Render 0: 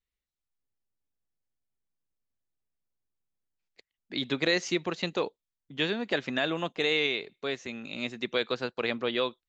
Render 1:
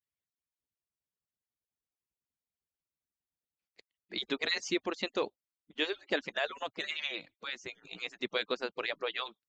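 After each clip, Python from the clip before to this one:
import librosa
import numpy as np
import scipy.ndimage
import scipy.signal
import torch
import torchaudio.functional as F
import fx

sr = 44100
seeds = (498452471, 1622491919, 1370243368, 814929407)

y = fx.hpss_only(x, sr, part='percussive')
y = F.gain(torch.from_numpy(y), -2.5).numpy()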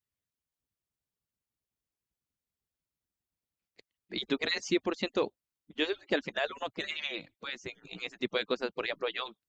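y = fx.low_shelf(x, sr, hz=320.0, db=9.0)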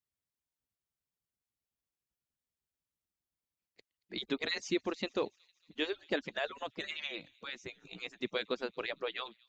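y = fx.echo_wet_highpass(x, sr, ms=228, feedback_pct=61, hz=3300.0, wet_db=-22)
y = F.gain(torch.from_numpy(y), -4.0).numpy()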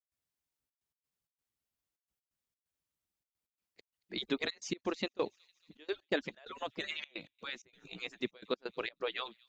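y = fx.step_gate(x, sr, bpm=130, pattern='.xxxxx.x.xx', floor_db=-24.0, edge_ms=4.5)
y = F.gain(torch.from_numpy(y), 1.0).numpy()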